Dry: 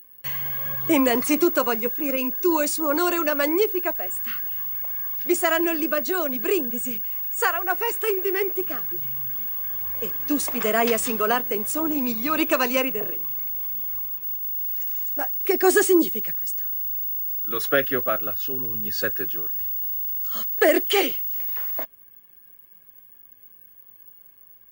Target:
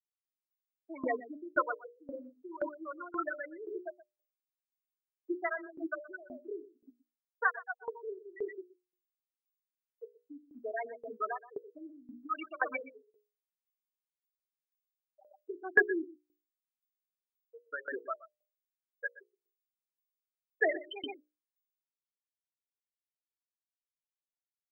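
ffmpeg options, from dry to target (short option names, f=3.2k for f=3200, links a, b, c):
-filter_complex "[0:a]afftfilt=real='re*gte(hypot(re,im),0.398)':imag='im*gte(hypot(re,im),0.398)':win_size=1024:overlap=0.75,highpass=f=360:w=0.5412,highpass=f=360:w=1.3066,equalizer=f=370:t=q:w=4:g=-6,equalizer=f=530:t=q:w=4:g=-10,equalizer=f=840:t=q:w=4:g=-5,equalizer=f=1.4k:t=q:w=4:g=3,equalizer=f=2.5k:t=q:w=4:g=5,equalizer=f=4k:t=q:w=4:g=-6,lowpass=f=5.2k:w=0.5412,lowpass=f=5.2k:w=1.3066,bandreject=f=60:t=h:w=6,bandreject=f=120:t=h:w=6,bandreject=f=180:t=h:w=6,bandreject=f=240:t=h:w=6,bandreject=f=300:t=h:w=6,bandreject=f=360:t=h:w=6,bandreject=f=420:t=h:w=6,bandreject=f=480:t=h:w=6,bandreject=f=540:t=h:w=6,bandreject=f=600:t=h:w=6,asplit=2[a][b];[b]aecho=0:1:123:0.224[c];[a][c]amix=inputs=2:normalize=0,aeval=exprs='val(0)*pow(10,-20*if(lt(mod(1.9*n/s,1),2*abs(1.9)/1000),1-mod(1.9*n/s,1)/(2*abs(1.9)/1000),(mod(1.9*n/s,1)-2*abs(1.9)/1000)/(1-2*abs(1.9)/1000))/20)':c=same"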